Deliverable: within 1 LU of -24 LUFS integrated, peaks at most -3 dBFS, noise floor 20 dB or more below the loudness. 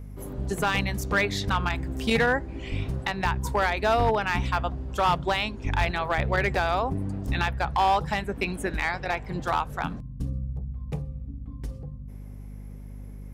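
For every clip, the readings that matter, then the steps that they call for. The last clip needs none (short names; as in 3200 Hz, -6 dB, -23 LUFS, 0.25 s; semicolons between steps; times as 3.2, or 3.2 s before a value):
clipped 0.6%; flat tops at -15.5 dBFS; hum 50 Hz; harmonics up to 250 Hz; hum level -37 dBFS; loudness -27.0 LUFS; peak -15.5 dBFS; loudness target -24.0 LUFS
-> clip repair -15.5 dBFS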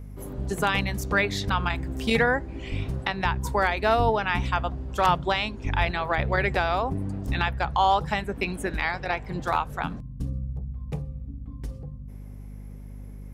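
clipped 0.0%; hum 50 Hz; harmonics up to 250 Hz; hum level -37 dBFS
-> de-hum 50 Hz, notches 5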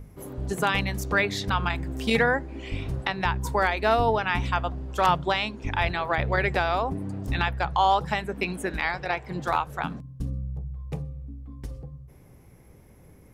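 hum none; loudness -26.5 LUFS; peak -7.0 dBFS; loudness target -24.0 LUFS
-> gain +2.5 dB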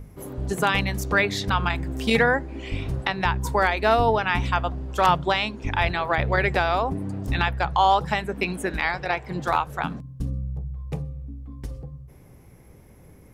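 loudness -24.0 LUFS; peak -4.5 dBFS; noise floor -49 dBFS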